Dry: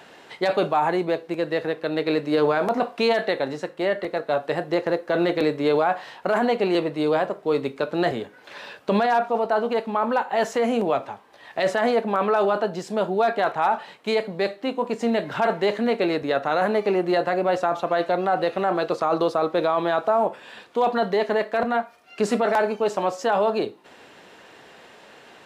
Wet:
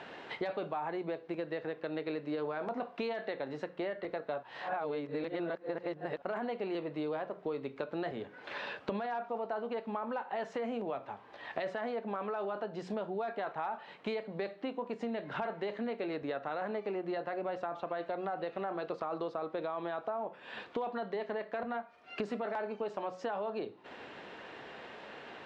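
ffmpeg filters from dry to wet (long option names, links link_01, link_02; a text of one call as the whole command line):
ffmpeg -i in.wav -filter_complex "[0:a]asplit=3[link_01][link_02][link_03];[link_01]atrim=end=4.432[link_04];[link_02]atrim=start=4.428:end=6.222,asetpts=PTS-STARTPTS,areverse[link_05];[link_03]atrim=start=6.218[link_06];[link_04][link_05]acrossfade=duration=0.004:curve1=hsin:curve2=hsin[link_07];[link_07][link_06]acrossfade=duration=0.004:curve1=hsin:curve2=hsin,lowpass=3400,bandreject=frequency=60:width_type=h:width=6,bandreject=frequency=120:width_type=h:width=6,bandreject=frequency=180:width_type=h:width=6,acompressor=threshold=-35dB:ratio=6" out.wav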